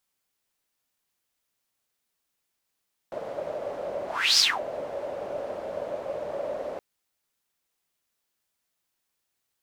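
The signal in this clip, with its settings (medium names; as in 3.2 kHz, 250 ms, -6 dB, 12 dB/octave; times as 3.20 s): whoosh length 3.67 s, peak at 1.27 s, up 0.35 s, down 0.23 s, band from 580 Hz, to 5.1 kHz, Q 7.9, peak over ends 14.5 dB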